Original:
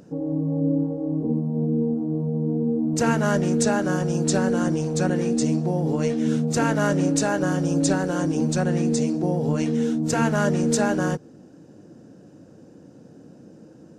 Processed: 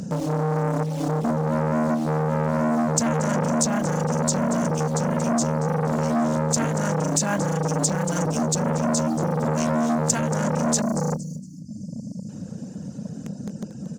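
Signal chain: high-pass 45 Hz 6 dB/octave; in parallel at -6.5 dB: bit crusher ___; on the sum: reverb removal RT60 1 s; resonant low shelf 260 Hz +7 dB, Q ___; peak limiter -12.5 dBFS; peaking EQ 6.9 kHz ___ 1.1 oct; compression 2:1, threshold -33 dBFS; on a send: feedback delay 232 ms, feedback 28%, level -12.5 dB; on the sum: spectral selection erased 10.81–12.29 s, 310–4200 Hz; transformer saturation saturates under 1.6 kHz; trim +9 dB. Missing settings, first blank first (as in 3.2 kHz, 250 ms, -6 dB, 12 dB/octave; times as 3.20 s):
6-bit, 3, +11.5 dB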